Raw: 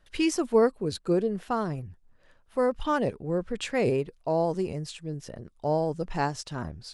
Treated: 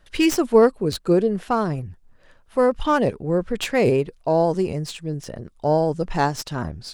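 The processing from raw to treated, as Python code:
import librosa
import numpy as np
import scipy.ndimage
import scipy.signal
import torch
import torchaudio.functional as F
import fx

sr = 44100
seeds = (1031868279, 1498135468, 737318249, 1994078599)

y = fx.tracing_dist(x, sr, depth_ms=0.054)
y = y * librosa.db_to_amplitude(7.0)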